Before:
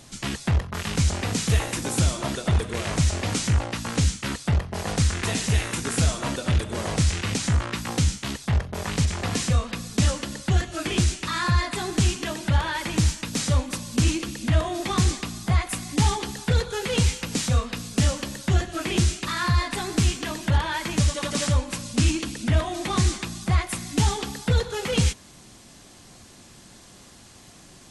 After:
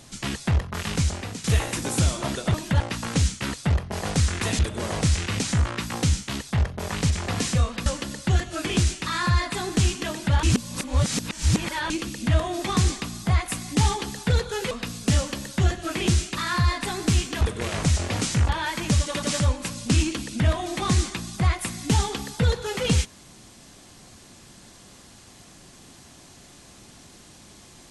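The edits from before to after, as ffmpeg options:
-filter_complex "[0:a]asplit=11[a][b][c][d][e][f][g][h][i][j][k];[a]atrim=end=1.44,asetpts=PTS-STARTPTS,afade=t=out:st=0.92:d=0.52:silence=0.211349[l];[b]atrim=start=1.44:end=2.542,asetpts=PTS-STARTPTS,afade=t=in:d=0.004:c=hsin:silence=0.211349[m];[c]atrim=start=20.308:end=20.572[n];[d]atrim=start=3.618:end=5.412[o];[e]atrim=start=6.538:end=9.812[p];[f]atrim=start=10.068:end=12.642[q];[g]atrim=start=12.638:end=14.112,asetpts=PTS-STARTPTS,areverse[r];[h]atrim=start=14.108:end=16.922[s];[i]atrim=start=17.608:end=20.312[t];[j]atrim=start=2.538:end=3.622[u];[k]atrim=start=20.568[v];[l][m]concat=n=2:v=0:a=1[w];[w][n]acrossfade=d=0.004:c1=hsin:c2=hsin[x];[x][o]acrossfade=d=0.004:c1=hsin:c2=hsin[y];[y][p]acrossfade=d=0.004:c1=hsin:c2=hsin[z];[z][q]acrossfade=d=0.004:c1=hsin:c2=hsin[aa];[aa][r]acrossfade=d=0.004:c1=hsin:c2=hsin[ab];[ab][s]acrossfade=d=0.004:c1=hsin:c2=hsin[ac];[ac][t]acrossfade=d=0.004:c1=hsin:c2=hsin[ad];[ad][u]acrossfade=d=0.004:c1=hsin:c2=hsin[ae];[ae][v]acrossfade=d=0.004:c1=hsin:c2=hsin"

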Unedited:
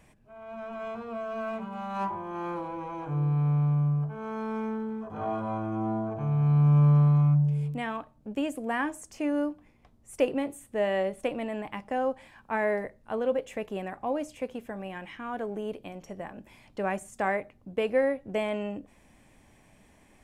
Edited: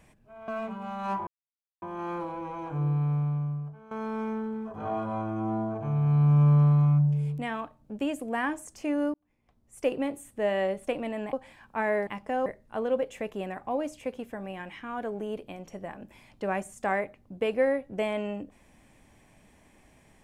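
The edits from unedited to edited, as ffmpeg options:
-filter_complex "[0:a]asplit=8[a][b][c][d][e][f][g][h];[a]atrim=end=0.482[i];[b]atrim=start=1.388:end=2.18,asetpts=PTS-STARTPTS,afade=t=out:st=0.788:d=0.004:c=hsin,apad=pad_dur=0.55[j];[c]atrim=start=2.18:end=4.27,asetpts=PTS-STARTPTS,afade=t=in:d=0.004:c=hsin,afade=t=out:st=1.05:d=1.04:silence=0.16788[k];[d]atrim=start=4.27:end=9.5,asetpts=PTS-STARTPTS,afade=t=in:d=0.004:c=hsin:silence=0.16788,afade=t=out:st=5.226:d=0.004:c=hsin[l];[e]atrim=start=9.5:end=11.692,asetpts=PTS-STARTPTS,afade=t=in:d=0.92[m];[f]atrim=start=12.078:end=12.822[n];[g]atrim=start=11.688:end=12.082[o];[h]atrim=start=12.818[p];[j][k][l][m]concat=n=4:v=0:a=1[q];[i][q]acrossfade=d=0.004:c1=hsin:c2=hsin[r];[r][n]acrossfade=d=0.004:c1=hsin:c2=hsin[s];[s][o]acrossfade=d=0.004:c1=hsin:c2=hsin[t];[t][p]acrossfade=d=0.004:c1=hsin:c2=hsin"

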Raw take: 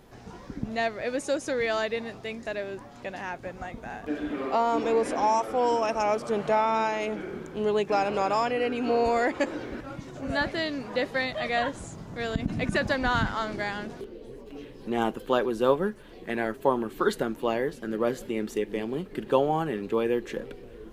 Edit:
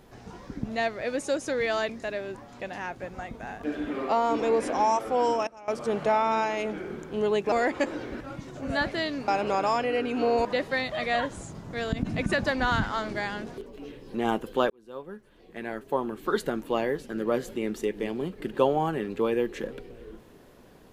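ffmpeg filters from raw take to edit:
-filter_complex "[0:a]asplit=9[a][b][c][d][e][f][g][h][i];[a]atrim=end=1.892[j];[b]atrim=start=2.318:end=5.9,asetpts=PTS-STARTPTS,afade=t=out:st=3.342:d=0.24:c=log:silence=0.0944061[k];[c]atrim=start=5.9:end=6.11,asetpts=PTS-STARTPTS,volume=-20.5dB[l];[d]atrim=start=6.11:end=7.952,asetpts=PTS-STARTPTS,afade=t=in:d=0.24:c=log:silence=0.0944061[m];[e]atrim=start=9.118:end=10.882[n];[f]atrim=start=7.948:end=9.122[o];[g]atrim=start=10.878:end=14.092[p];[h]atrim=start=14.388:end=15.43,asetpts=PTS-STARTPTS,afade=t=out:st=1.038:d=0.004:c=hsin[q];[i]atrim=start=15.43,asetpts=PTS-STARTPTS,afade=t=in:d=1.98[r];[k][l][m]concat=n=3:v=0:a=1[s];[j][s]acrossfade=d=0.004:c1=hsin:c2=hsin[t];[t][n]acrossfade=d=0.004:c1=hsin:c2=hsin[u];[u][o]acrossfade=d=0.004:c1=hsin:c2=hsin[v];[v][p]acrossfade=d=0.004:c1=hsin:c2=hsin[w];[q][r]concat=n=2:v=0:a=1[x];[w][x]acrossfade=d=0.004:c1=hsin:c2=hsin"

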